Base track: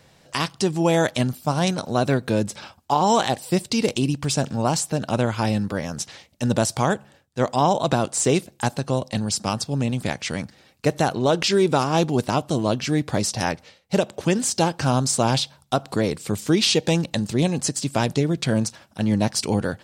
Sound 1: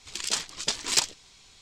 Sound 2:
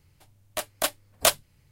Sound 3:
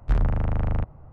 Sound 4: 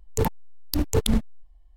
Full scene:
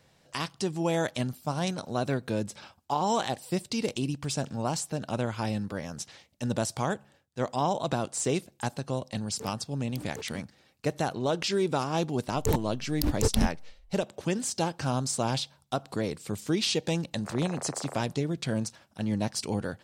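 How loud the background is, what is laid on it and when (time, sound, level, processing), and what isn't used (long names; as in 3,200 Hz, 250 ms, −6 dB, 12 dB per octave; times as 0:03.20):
base track −8.5 dB
0:09.22: mix in 4 −16.5 dB + Bessel high-pass filter 230 Hz
0:12.28: mix in 4 −3.5 dB
0:17.17: mix in 3 −3 dB + single-sideband voice off tune −74 Hz 500–2,500 Hz
not used: 1, 2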